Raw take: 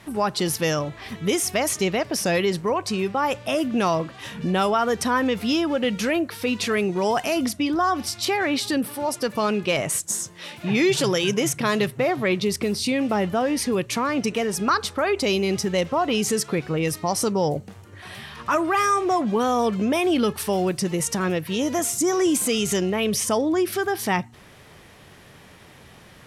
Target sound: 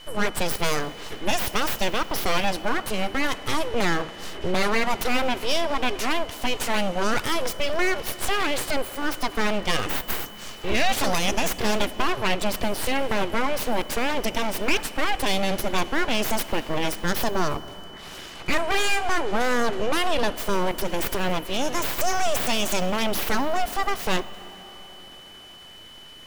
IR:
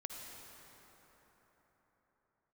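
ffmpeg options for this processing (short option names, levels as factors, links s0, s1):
-filter_complex "[0:a]aeval=exprs='abs(val(0))':c=same,aeval=exprs='val(0)+0.00501*sin(2*PI*3000*n/s)':c=same,asplit=2[s0][s1];[1:a]atrim=start_sample=2205[s2];[s1][s2]afir=irnorm=-1:irlink=0,volume=0.355[s3];[s0][s3]amix=inputs=2:normalize=0"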